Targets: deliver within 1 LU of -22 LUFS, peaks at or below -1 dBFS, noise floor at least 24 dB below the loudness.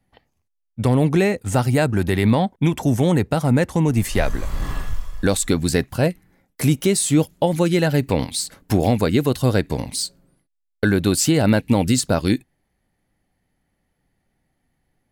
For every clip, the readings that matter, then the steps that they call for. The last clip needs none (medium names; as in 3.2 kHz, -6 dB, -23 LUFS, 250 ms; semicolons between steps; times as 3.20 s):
loudness -20.0 LUFS; peak level -4.5 dBFS; loudness target -22.0 LUFS
-> trim -2 dB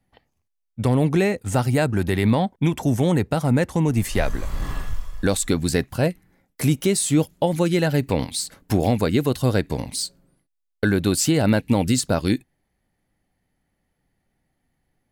loudness -22.0 LUFS; peak level -6.5 dBFS; noise floor -75 dBFS